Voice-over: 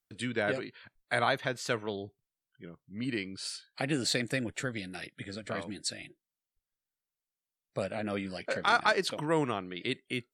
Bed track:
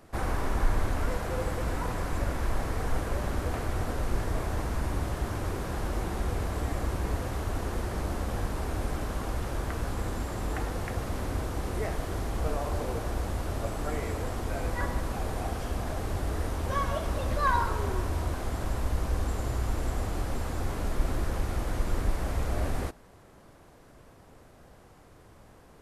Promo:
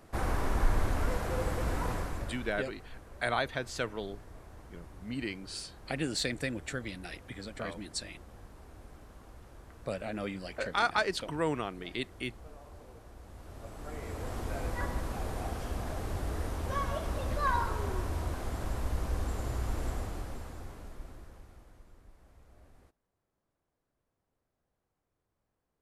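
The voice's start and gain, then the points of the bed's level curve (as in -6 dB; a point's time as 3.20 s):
2.10 s, -2.5 dB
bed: 1.93 s -1.5 dB
2.72 s -20 dB
13.18 s -20 dB
14.37 s -4 dB
19.89 s -4 dB
21.98 s -29.5 dB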